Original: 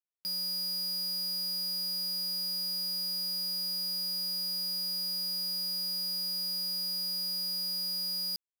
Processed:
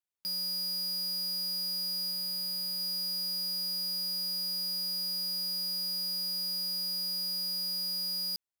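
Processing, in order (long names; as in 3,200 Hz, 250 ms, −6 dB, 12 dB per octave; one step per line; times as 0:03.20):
0:02.11–0:02.80: notch filter 5,600 Hz, Q 6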